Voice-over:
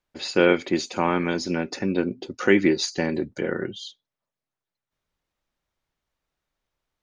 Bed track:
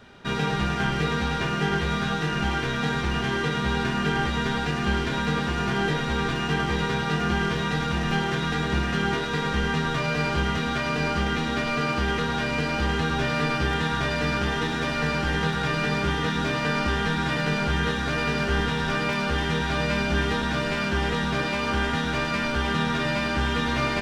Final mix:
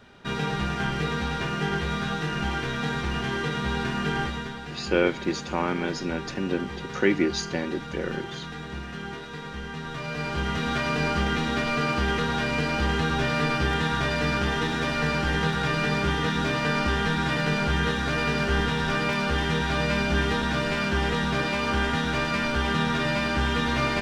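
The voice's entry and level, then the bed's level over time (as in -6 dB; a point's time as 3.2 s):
4.55 s, -4.0 dB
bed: 4.22 s -2.5 dB
4.56 s -11 dB
9.71 s -11 dB
10.73 s 0 dB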